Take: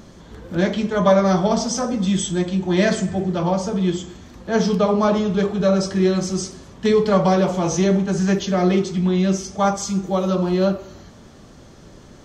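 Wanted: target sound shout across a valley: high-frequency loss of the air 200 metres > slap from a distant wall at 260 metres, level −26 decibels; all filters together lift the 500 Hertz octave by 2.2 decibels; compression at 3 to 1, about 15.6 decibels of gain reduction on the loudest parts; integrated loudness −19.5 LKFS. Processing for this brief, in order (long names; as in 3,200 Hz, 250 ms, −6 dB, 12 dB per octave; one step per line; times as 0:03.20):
parametric band 500 Hz +3.5 dB
downward compressor 3 to 1, threshold −31 dBFS
high-frequency loss of the air 200 metres
slap from a distant wall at 260 metres, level −26 dB
level +12 dB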